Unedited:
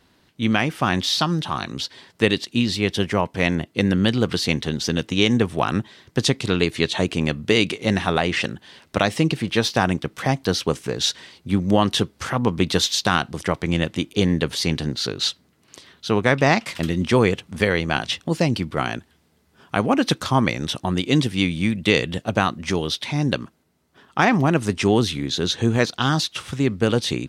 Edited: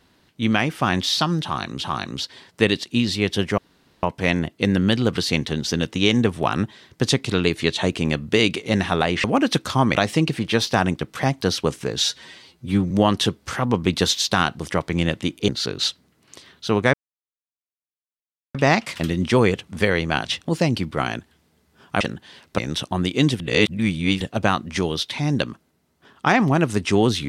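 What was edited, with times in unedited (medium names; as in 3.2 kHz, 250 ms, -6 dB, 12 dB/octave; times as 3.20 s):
1.43–1.82 s: loop, 2 plays
3.19 s: insert room tone 0.45 s
8.40–8.98 s: swap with 19.80–20.51 s
11.05–11.64 s: stretch 1.5×
14.22–14.89 s: delete
16.34 s: insert silence 1.61 s
21.32–22.13 s: reverse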